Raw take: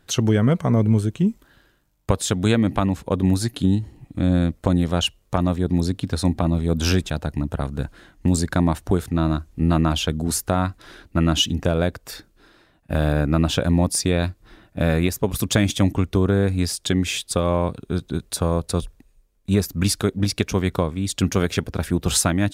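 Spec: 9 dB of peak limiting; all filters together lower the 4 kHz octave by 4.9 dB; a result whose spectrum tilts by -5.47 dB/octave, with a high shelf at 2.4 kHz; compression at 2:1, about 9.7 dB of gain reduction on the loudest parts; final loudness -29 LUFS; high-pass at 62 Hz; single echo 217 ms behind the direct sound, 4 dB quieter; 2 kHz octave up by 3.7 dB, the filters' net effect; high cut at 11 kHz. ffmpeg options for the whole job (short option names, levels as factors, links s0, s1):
-af "highpass=62,lowpass=11000,equalizer=f=2000:t=o:g=9,highshelf=f=2400:g=-4,equalizer=f=4000:t=o:g=-8,acompressor=threshold=0.0251:ratio=2,alimiter=limit=0.112:level=0:latency=1,aecho=1:1:217:0.631,volume=1.33"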